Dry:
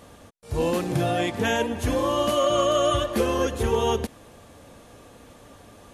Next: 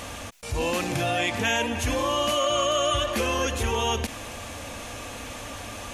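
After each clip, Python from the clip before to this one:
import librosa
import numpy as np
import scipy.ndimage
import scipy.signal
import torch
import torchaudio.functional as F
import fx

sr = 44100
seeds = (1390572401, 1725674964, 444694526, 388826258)

y = fx.graphic_eq_15(x, sr, hz=(160, 400, 2500, 6300), db=(-9, -8, 7, 5))
y = fx.env_flatten(y, sr, amount_pct=50)
y = F.gain(torch.from_numpy(y), -2.0).numpy()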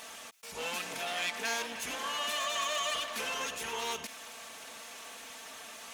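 y = fx.lower_of_two(x, sr, delay_ms=4.5)
y = fx.highpass(y, sr, hz=930.0, slope=6)
y = F.gain(torch.from_numpy(y), -5.5).numpy()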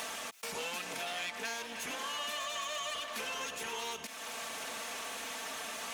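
y = fx.band_squash(x, sr, depth_pct=100)
y = F.gain(torch.from_numpy(y), -4.0).numpy()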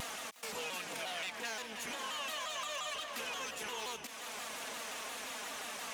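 y = x + 10.0 ** (-16.5 / 20.0) * np.pad(x, (int(358 * sr / 1000.0), 0))[:len(x)]
y = fx.vibrato_shape(y, sr, shape='saw_down', rate_hz=5.7, depth_cents=160.0)
y = F.gain(torch.from_numpy(y), -2.0).numpy()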